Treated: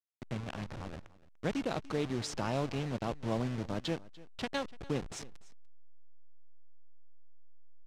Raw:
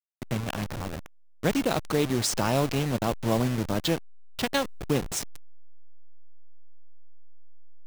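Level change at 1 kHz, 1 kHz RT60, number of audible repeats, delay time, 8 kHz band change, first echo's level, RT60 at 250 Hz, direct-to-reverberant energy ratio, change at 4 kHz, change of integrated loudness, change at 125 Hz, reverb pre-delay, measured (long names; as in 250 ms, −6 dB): −9.0 dB, no reverb audible, 1, 293 ms, −15.0 dB, −20.5 dB, no reverb audible, no reverb audible, −10.5 dB, −9.0 dB, −8.5 dB, no reverb audible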